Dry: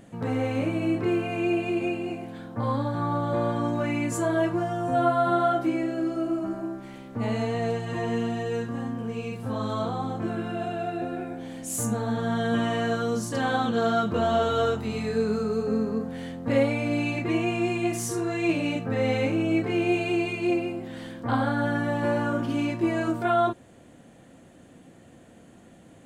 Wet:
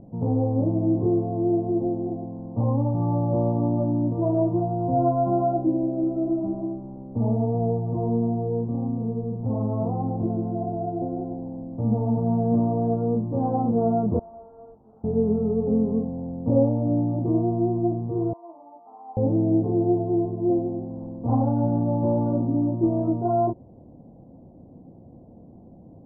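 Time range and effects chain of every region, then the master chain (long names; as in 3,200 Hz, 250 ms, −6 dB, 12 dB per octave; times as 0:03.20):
0:14.19–0:15.04: first difference + linearly interpolated sample-rate reduction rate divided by 8×
0:18.33–0:19.17: high-pass filter 600 Hz 24 dB per octave + phaser with its sweep stopped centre 2,600 Hz, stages 8 + notch comb filter 1,500 Hz
whole clip: Butterworth low-pass 920 Hz 48 dB per octave; low-shelf EQ 230 Hz +9 dB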